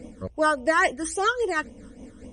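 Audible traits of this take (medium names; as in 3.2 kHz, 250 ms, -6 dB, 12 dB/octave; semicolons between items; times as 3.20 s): tremolo triangle 5 Hz, depth 55%; phasing stages 12, 3.6 Hz, lowest notch 730–1500 Hz; MP3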